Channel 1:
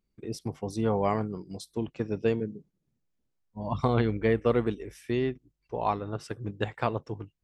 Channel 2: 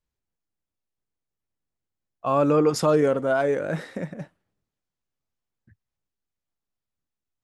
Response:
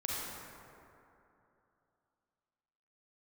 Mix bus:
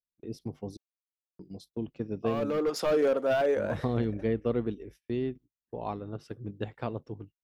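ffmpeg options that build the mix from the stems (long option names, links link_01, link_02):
-filter_complex "[0:a]volume=-4.5dB,asplit=3[link_01][link_02][link_03];[link_01]atrim=end=0.77,asetpts=PTS-STARTPTS,afade=type=out:start_time=0.766:duration=0.004:curve=hsin[link_04];[link_02]atrim=start=0.77:end=1.39,asetpts=PTS-STARTPTS,volume=0[link_05];[link_03]atrim=start=1.39,asetpts=PTS-STARTPTS,afade=type=in:duration=0.004:curve=hsin[link_06];[link_04][link_05][link_06]concat=n=3:v=0:a=1,asplit=2[link_07][link_08];[1:a]highpass=510,asoftclip=type=hard:threshold=-21.5dB,volume=2dB[link_09];[link_08]apad=whole_len=327817[link_10];[link_09][link_10]sidechaincompress=threshold=-31dB:ratio=8:attack=21:release=1150[link_11];[link_07][link_11]amix=inputs=2:normalize=0,agate=range=-26dB:threshold=-50dB:ratio=16:detection=peak,equalizer=frequency=250:width_type=o:width=1:gain=3,equalizer=frequency=1000:width_type=o:width=1:gain=-5,equalizer=frequency=2000:width_type=o:width=1:gain=-5,equalizer=frequency=8000:width_type=o:width=1:gain=-11"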